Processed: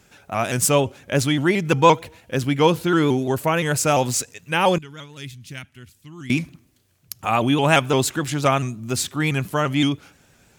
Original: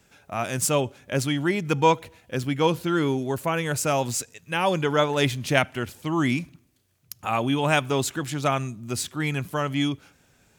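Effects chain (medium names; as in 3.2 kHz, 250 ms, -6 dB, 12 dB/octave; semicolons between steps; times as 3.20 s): 4.78–6.30 s: amplifier tone stack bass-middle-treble 6-0-2; vibrato with a chosen wave saw up 5.8 Hz, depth 100 cents; trim +5 dB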